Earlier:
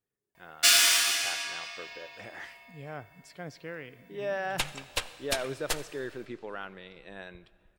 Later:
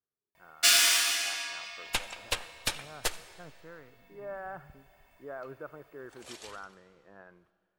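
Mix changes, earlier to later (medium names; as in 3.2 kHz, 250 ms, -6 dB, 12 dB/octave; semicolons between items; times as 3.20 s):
speech: add four-pole ladder low-pass 1.5 kHz, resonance 50%; first sound: send -11.5 dB; second sound: entry -2.65 s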